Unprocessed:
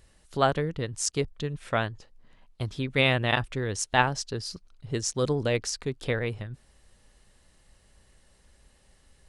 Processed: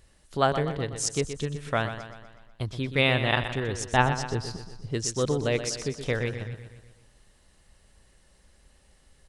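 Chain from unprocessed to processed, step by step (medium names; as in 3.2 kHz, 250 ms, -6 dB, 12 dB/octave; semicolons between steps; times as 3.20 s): 3.74–4.88 s: tilt EQ -1.5 dB/octave; on a send: feedback delay 123 ms, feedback 53%, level -10 dB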